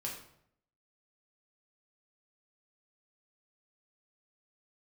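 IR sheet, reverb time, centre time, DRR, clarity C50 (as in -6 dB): 0.70 s, 34 ms, -3.0 dB, 5.0 dB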